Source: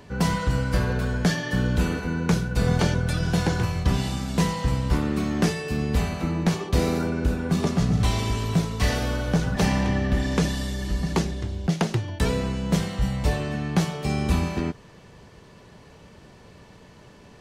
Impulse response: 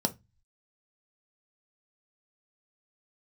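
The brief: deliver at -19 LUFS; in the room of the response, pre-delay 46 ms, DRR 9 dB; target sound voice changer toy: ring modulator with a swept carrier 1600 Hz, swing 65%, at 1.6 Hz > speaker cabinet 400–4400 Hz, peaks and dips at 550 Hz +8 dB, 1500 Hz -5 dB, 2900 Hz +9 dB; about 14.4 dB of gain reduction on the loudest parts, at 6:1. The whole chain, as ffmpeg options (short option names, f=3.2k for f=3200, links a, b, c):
-filter_complex "[0:a]acompressor=threshold=-33dB:ratio=6,asplit=2[a][b];[1:a]atrim=start_sample=2205,adelay=46[c];[b][c]afir=irnorm=-1:irlink=0,volume=-15.5dB[d];[a][d]amix=inputs=2:normalize=0,aeval=exprs='val(0)*sin(2*PI*1600*n/s+1600*0.65/1.6*sin(2*PI*1.6*n/s))':c=same,highpass=400,equalizer=f=550:t=q:w=4:g=8,equalizer=f=1.5k:t=q:w=4:g=-5,equalizer=f=2.9k:t=q:w=4:g=9,lowpass=f=4.4k:w=0.5412,lowpass=f=4.4k:w=1.3066,volume=13.5dB"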